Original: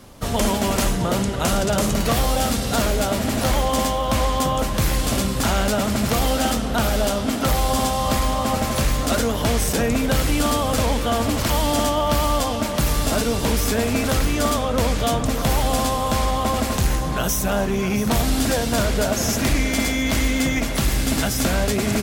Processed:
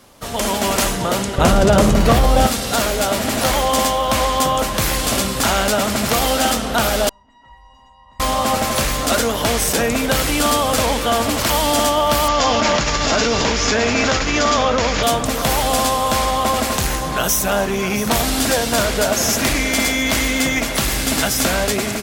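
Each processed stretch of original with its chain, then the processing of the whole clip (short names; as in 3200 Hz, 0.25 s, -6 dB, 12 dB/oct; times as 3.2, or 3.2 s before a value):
1.38–2.47 tilt -2.5 dB/oct + fast leveller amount 50%
7.09–8.2 Bessel low-pass 1300 Hz + resonator 960 Hz, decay 0.35 s, mix 100%
12.28–15.03 rippled Chebyshev low-pass 7100 Hz, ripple 3 dB + fast leveller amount 100%
whole clip: low shelf 290 Hz -10 dB; AGC gain up to 6.5 dB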